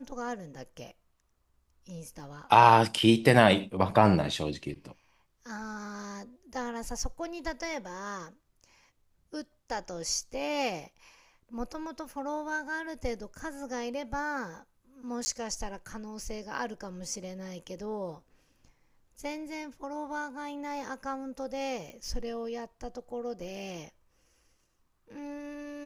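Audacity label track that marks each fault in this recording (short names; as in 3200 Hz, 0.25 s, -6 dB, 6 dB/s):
15.250000	15.260000	gap 10 ms
21.900000	21.900000	pop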